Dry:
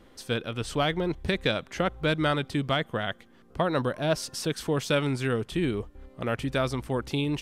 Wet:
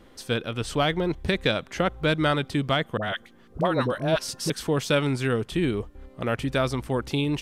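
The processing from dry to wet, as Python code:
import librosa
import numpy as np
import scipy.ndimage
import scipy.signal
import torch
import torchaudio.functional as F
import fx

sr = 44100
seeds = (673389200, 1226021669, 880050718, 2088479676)

y = fx.dispersion(x, sr, late='highs', ms=58.0, hz=680.0, at=(2.97, 4.5))
y = y * librosa.db_to_amplitude(2.5)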